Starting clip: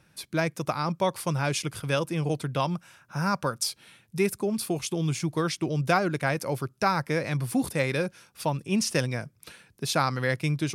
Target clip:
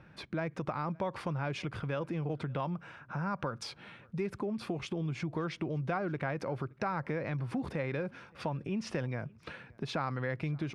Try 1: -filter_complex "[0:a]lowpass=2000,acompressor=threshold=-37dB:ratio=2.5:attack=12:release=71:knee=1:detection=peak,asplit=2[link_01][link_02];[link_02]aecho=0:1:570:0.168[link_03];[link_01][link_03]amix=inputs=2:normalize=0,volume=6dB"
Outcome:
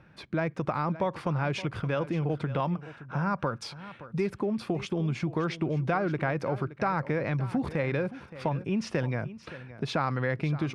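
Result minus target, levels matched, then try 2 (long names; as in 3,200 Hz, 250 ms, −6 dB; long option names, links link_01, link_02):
echo-to-direct +11.5 dB; downward compressor: peak gain reduction −6 dB
-filter_complex "[0:a]lowpass=2000,acompressor=threshold=-47dB:ratio=2.5:attack=12:release=71:knee=1:detection=peak,asplit=2[link_01][link_02];[link_02]aecho=0:1:570:0.0447[link_03];[link_01][link_03]amix=inputs=2:normalize=0,volume=6dB"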